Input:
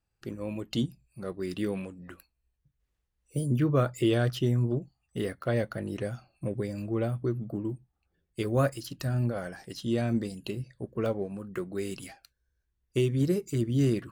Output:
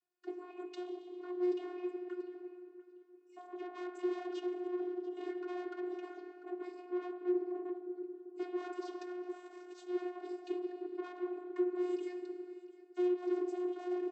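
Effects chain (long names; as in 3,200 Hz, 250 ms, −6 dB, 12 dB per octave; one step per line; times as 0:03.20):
on a send at −7 dB: convolution reverb RT60 2.7 s, pre-delay 3 ms
0:09.29–0:09.87: on the sum: bad sample-rate conversion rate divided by 4×, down none, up zero stuff
repeating echo 695 ms, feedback 17%, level −21 dB
tube saturation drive 37 dB, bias 0.45
channel vocoder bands 32, saw 359 Hz
level +2 dB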